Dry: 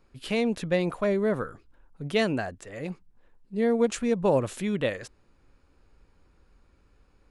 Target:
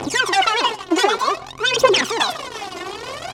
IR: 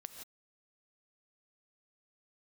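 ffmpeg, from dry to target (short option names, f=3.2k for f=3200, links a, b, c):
-filter_complex "[0:a]aeval=exprs='val(0)+0.5*0.0188*sgn(val(0))':c=same,equalizer=f=440:t=o:w=0.65:g=5,bandreject=f=760:w=12,aecho=1:1:6:0.33,aeval=exprs='0.266*sin(PI/2*3.55*val(0)/0.266)':c=same,aeval=exprs='val(0)+0.0158*(sin(2*PI*60*n/s)+sin(2*PI*2*60*n/s)/2+sin(2*PI*3*60*n/s)/3+sin(2*PI*4*60*n/s)/4+sin(2*PI*5*60*n/s)/5)':c=same,asetrate=96579,aresample=44100,aphaser=in_gain=1:out_gain=1:delay=2.9:decay=0.79:speed=0.54:type=triangular,highpass=230,lowpass=6.2k,asplit=2[a][b];[1:a]atrim=start_sample=2205,atrim=end_sample=6615[c];[b][c]afir=irnorm=-1:irlink=0,volume=-5dB[d];[a][d]amix=inputs=2:normalize=0,volume=-7dB"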